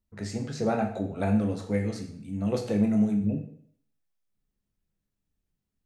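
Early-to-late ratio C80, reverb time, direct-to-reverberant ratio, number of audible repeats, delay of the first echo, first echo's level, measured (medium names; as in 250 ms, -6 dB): 12.0 dB, 0.60 s, 3.0 dB, no echo, no echo, no echo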